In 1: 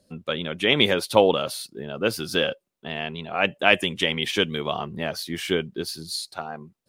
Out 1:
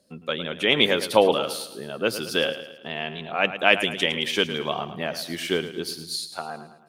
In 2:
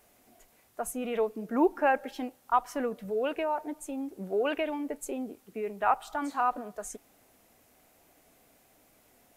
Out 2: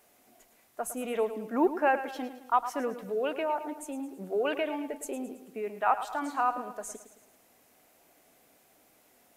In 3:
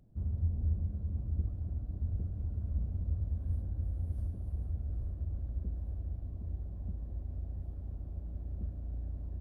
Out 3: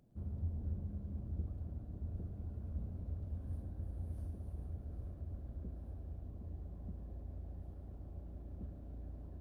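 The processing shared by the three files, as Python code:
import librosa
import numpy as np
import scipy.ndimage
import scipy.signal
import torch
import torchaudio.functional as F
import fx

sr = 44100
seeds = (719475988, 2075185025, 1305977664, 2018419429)

p1 = fx.low_shelf(x, sr, hz=110.0, db=-11.5)
p2 = fx.hum_notches(p1, sr, base_hz=50, count=2)
y = p2 + fx.echo_feedback(p2, sr, ms=109, feedback_pct=48, wet_db=-12, dry=0)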